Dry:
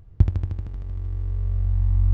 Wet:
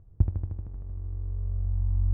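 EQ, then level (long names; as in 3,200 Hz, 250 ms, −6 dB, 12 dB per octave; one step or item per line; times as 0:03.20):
low-pass filter 1,000 Hz 12 dB per octave
−6.0 dB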